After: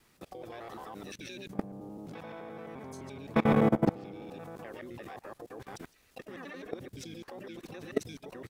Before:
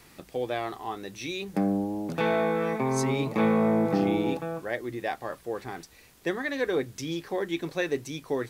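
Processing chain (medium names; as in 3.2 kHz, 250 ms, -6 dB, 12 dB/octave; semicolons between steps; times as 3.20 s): time reversed locally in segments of 86 ms; harmony voices -7 st -7 dB, +7 st -11 dB; level held to a coarse grid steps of 22 dB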